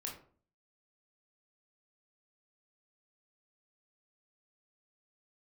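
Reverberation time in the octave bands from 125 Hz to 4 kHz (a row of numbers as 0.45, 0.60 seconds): 0.65, 0.55, 0.50, 0.45, 0.35, 0.25 seconds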